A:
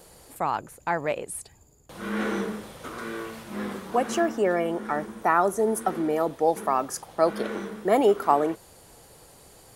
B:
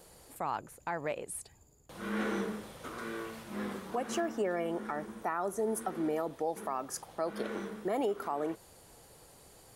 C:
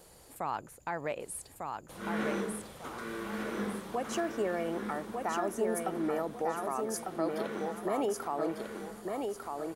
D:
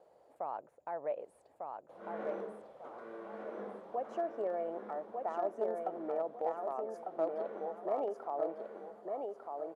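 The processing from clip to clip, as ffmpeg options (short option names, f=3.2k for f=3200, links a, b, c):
-af "alimiter=limit=-18dB:level=0:latency=1:release=185,volume=-5.5dB"
-af "aecho=1:1:1199|2398|3597|4796:0.631|0.202|0.0646|0.0207"
-filter_complex "[0:a]asplit=2[a][b];[b]acrusher=bits=3:mix=0:aa=0.000001,volume=-11dB[c];[a][c]amix=inputs=2:normalize=0,bandpass=f=620:t=q:w=2.6:csg=0,volume=1dB"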